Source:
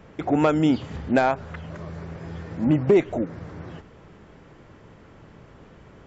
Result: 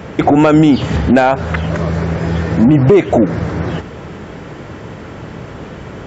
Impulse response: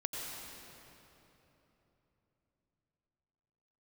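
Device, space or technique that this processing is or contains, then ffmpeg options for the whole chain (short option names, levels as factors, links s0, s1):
mastering chain: -af "highpass=57,equalizer=f=1100:t=o:w=0.22:g=-2,acompressor=threshold=0.0708:ratio=2,asoftclip=type=tanh:threshold=0.188,alimiter=level_in=10.6:limit=0.891:release=50:level=0:latency=1,volume=0.891"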